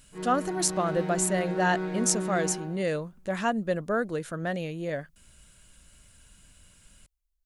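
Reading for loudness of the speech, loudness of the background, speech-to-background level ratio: -28.5 LUFS, -33.5 LUFS, 5.0 dB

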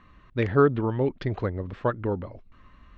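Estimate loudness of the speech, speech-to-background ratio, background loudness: -26.5 LUFS, 17.0 dB, -43.5 LUFS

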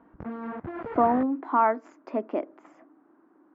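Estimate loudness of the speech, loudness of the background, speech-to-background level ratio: -26.5 LUFS, -37.5 LUFS, 11.0 dB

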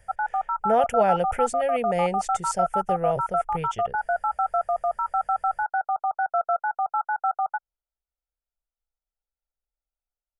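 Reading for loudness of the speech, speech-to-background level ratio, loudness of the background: -27.0 LUFS, -0.5 dB, -26.5 LUFS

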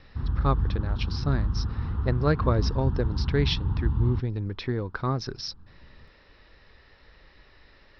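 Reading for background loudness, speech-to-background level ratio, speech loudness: -29.5 LUFS, 0.0 dB, -29.5 LUFS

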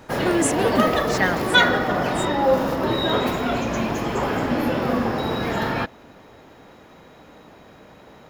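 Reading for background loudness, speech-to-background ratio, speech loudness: -22.0 LUFS, -4.0 dB, -26.0 LUFS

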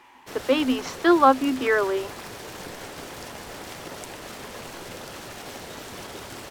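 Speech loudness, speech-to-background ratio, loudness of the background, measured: -21.5 LUFS, 16.5 dB, -38.0 LUFS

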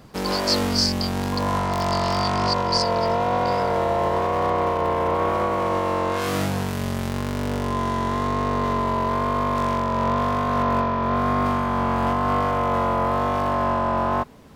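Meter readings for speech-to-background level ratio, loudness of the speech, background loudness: -3.5 dB, -26.5 LUFS, -23.0 LUFS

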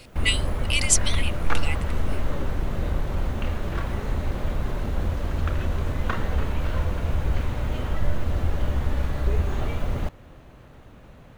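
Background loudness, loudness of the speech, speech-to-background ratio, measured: -28.5 LUFS, -25.5 LUFS, 3.0 dB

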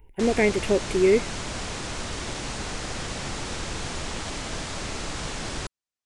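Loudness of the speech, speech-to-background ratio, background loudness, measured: -22.5 LUFS, 10.0 dB, -32.5 LUFS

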